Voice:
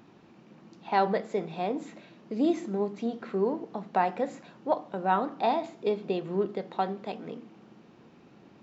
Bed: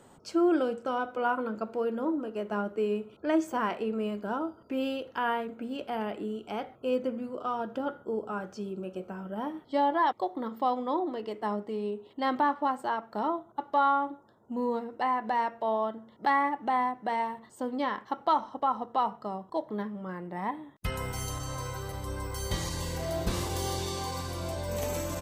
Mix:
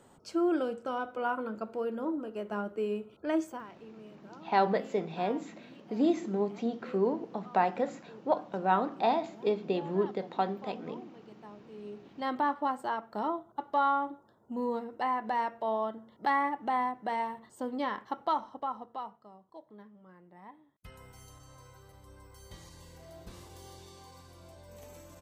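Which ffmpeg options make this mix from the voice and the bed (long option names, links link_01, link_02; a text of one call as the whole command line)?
ffmpeg -i stem1.wav -i stem2.wav -filter_complex "[0:a]adelay=3600,volume=-1dB[link_01];[1:a]volume=13dB,afade=type=out:start_time=3.42:duration=0.22:silence=0.16788,afade=type=in:start_time=11.63:duration=0.88:silence=0.149624,afade=type=out:start_time=18.07:duration=1.16:silence=0.16788[link_02];[link_01][link_02]amix=inputs=2:normalize=0" out.wav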